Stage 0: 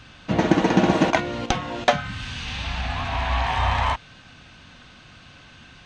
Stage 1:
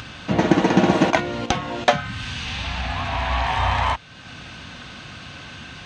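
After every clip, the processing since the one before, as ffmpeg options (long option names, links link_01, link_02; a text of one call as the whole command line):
ffmpeg -i in.wav -filter_complex "[0:a]highpass=56,asplit=2[link_01][link_02];[link_02]acompressor=mode=upward:threshold=-25dB:ratio=2.5,volume=3dB[link_03];[link_01][link_03]amix=inputs=2:normalize=0,volume=-6dB" out.wav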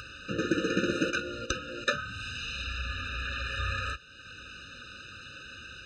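ffmpeg -i in.wav -af "equalizer=frequency=170:width=0.63:gain=-12,flanger=delay=1.4:depth=9.8:regen=-54:speed=0.7:shape=triangular,afftfilt=real='re*eq(mod(floor(b*sr/1024/600),2),0)':imag='im*eq(mod(floor(b*sr/1024/600),2),0)':win_size=1024:overlap=0.75" out.wav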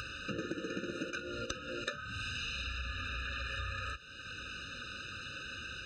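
ffmpeg -i in.wav -af "acompressor=threshold=-37dB:ratio=10,volume=1.5dB" out.wav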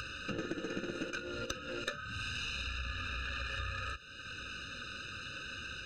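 ffmpeg -i in.wav -af "aeval=exprs='0.126*(cos(1*acos(clip(val(0)/0.126,-1,1)))-cos(1*PI/2))+0.00562*(cos(8*acos(clip(val(0)/0.126,-1,1)))-cos(8*PI/2))':channel_layout=same" out.wav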